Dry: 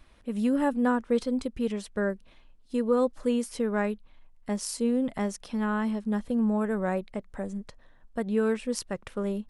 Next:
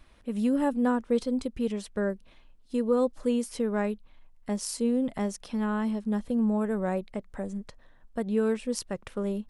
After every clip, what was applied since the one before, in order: dynamic bell 1.6 kHz, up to -4 dB, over -43 dBFS, Q 0.97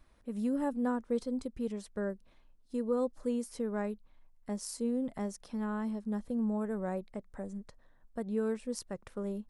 peaking EQ 2.9 kHz -6.5 dB 0.9 oct; trim -6.5 dB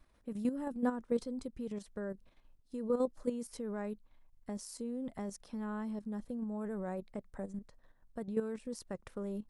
level held to a coarse grid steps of 10 dB; trim +1.5 dB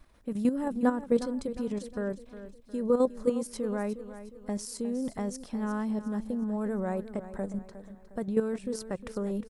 feedback delay 359 ms, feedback 43%, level -13 dB; trim +7.5 dB

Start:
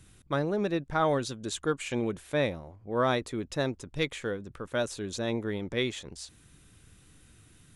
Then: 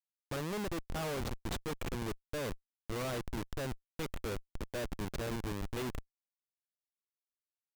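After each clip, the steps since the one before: Schmitt trigger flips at -30.5 dBFS; trim -4 dB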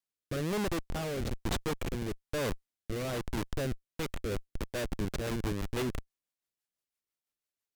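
rotary cabinet horn 1.1 Hz, later 6 Hz, at 3.79 s; trim +6 dB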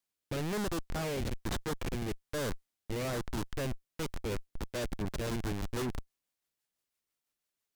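saturation -35.5 dBFS, distortion -10 dB; trim +4 dB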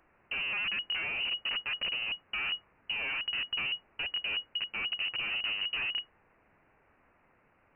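added noise blue -50 dBFS; feedback echo behind a high-pass 61 ms, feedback 66%, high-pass 2.3 kHz, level -20 dB; frequency inversion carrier 2.9 kHz

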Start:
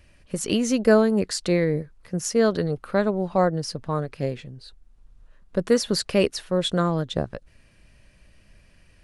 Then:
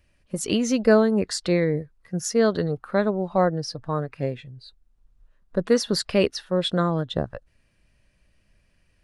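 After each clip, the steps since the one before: spectral noise reduction 9 dB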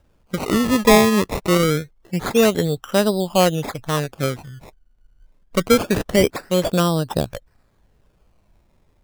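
decimation with a swept rate 20×, swing 100% 0.25 Hz; trim +4.5 dB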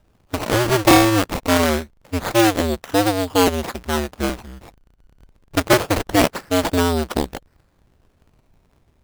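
cycle switcher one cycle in 2, inverted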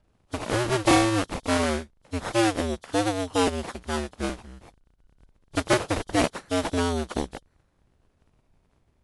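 knee-point frequency compression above 3 kHz 1.5:1; trim -7 dB

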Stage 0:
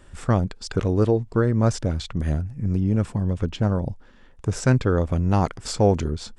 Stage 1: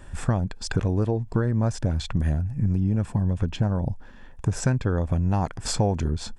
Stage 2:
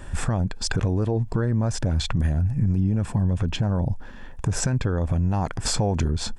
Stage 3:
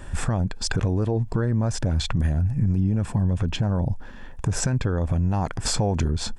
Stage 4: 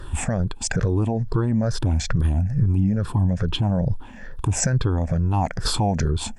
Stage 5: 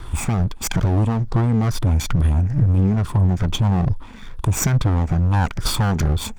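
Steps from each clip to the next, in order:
peaking EQ 4.2 kHz -4 dB 1.6 oct; comb 1.2 ms, depth 31%; compression 5:1, threshold -24 dBFS, peak gain reduction 11.5 dB; trim +4.5 dB
peak limiter -20 dBFS, peak gain reduction 10.5 dB; trim +6 dB
no audible change
drifting ripple filter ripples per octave 0.6, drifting -2.3 Hz, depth 13 dB
comb filter that takes the minimum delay 0.87 ms; trim +3 dB

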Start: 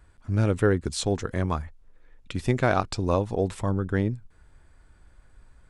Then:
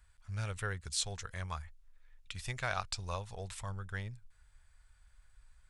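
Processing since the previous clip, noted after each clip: amplifier tone stack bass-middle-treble 10-0-10; trim -2 dB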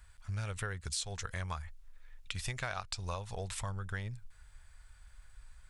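compression 5:1, threshold -42 dBFS, peak gain reduction 11.5 dB; trim +7 dB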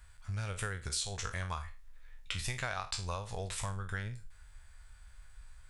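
spectral sustain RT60 0.33 s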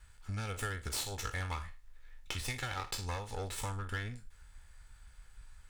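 comb filter that takes the minimum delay 2.3 ms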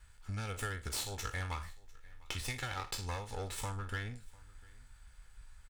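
delay 699 ms -24 dB; trim -1 dB

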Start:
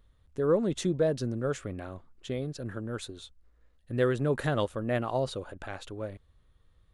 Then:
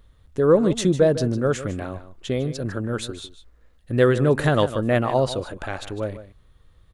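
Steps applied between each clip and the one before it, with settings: delay 152 ms -13.5 dB; trim +9 dB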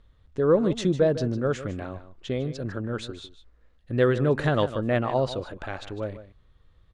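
low-pass 5.4 kHz 12 dB/octave; trim -4 dB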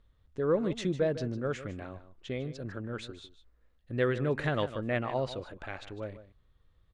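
dynamic bell 2.2 kHz, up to +7 dB, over -49 dBFS, Q 1.9; trim -7.5 dB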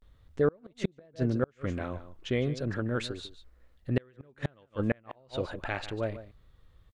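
vibrato 0.37 Hz 78 cents; inverted gate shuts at -22 dBFS, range -36 dB; trim +7 dB

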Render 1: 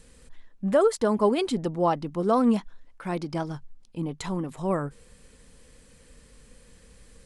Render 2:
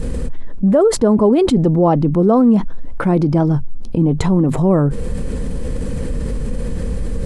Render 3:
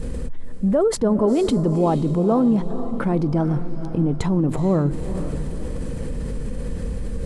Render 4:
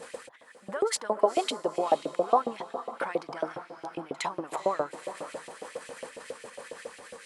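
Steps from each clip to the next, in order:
tilt shelf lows +10 dB; level flattener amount 70%
echo that smears into a reverb 474 ms, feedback 43%, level -11 dB; trim -6 dB
LFO high-pass saw up 7.3 Hz 530–2900 Hz; reverse echo 61 ms -24 dB; trim -2 dB

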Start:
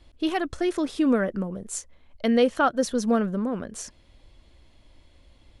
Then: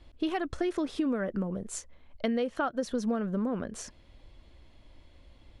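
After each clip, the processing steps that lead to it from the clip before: treble shelf 5.6 kHz -9 dB; compression 10:1, threshold -26 dBFS, peak gain reduction 11.5 dB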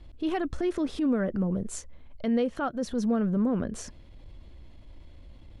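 bass shelf 340 Hz +8.5 dB; transient shaper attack -7 dB, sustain +1 dB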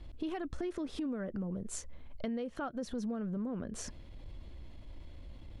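compression 6:1, threshold -35 dBFS, peak gain reduction 12.5 dB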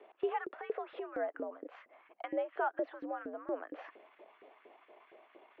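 mistuned SSB +80 Hz 170–2700 Hz; LFO high-pass saw up 4.3 Hz 420–1600 Hz; trim +1.5 dB

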